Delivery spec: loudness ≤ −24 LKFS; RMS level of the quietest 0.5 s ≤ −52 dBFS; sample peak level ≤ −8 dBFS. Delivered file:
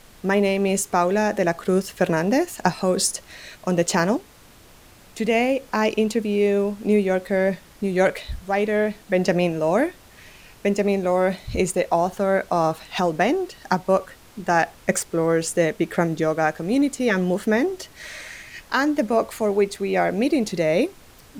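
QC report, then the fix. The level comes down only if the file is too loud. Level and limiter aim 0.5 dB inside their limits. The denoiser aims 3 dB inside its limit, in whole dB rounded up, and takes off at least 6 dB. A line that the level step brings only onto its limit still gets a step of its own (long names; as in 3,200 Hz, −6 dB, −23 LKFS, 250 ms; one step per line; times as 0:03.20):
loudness −22.0 LKFS: out of spec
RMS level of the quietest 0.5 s −49 dBFS: out of spec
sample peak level −3.5 dBFS: out of spec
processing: broadband denoise 6 dB, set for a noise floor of −49 dBFS
level −2.5 dB
brickwall limiter −8.5 dBFS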